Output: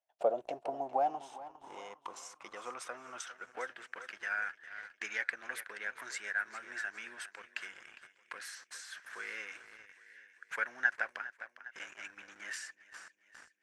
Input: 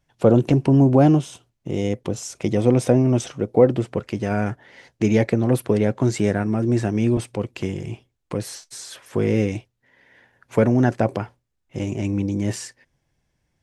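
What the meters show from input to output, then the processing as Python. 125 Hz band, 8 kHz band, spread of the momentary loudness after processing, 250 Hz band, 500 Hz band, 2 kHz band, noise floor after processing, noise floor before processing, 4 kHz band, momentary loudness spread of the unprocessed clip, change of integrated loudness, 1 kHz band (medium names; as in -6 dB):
under -40 dB, -13.0 dB, 19 LU, -37.0 dB, -20.5 dB, -0.5 dB, -72 dBFS, -74 dBFS, -11.0 dB, 17 LU, -19.0 dB, -9.0 dB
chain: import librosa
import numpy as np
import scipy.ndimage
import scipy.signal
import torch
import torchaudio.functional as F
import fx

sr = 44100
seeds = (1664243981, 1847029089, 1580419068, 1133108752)

p1 = np.diff(x, prepend=0.0)
p2 = fx.echo_feedback(p1, sr, ms=406, feedback_pct=50, wet_db=-13)
p3 = fx.schmitt(p2, sr, flips_db=-47.0)
p4 = p2 + (p3 * 10.0 ** (-11.0 / 20.0))
p5 = fx.transient(p4, sr, attack_db=5, sustain_db=-3)
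p6 = fx.filter_sweep_bandpass(p5, sr, from_hz=660.0, to_hz=1600.0, start_s=0.46, end_s=3.76, q=5.9)
y = p6 * 10.0 ** (14.0 / 20.0)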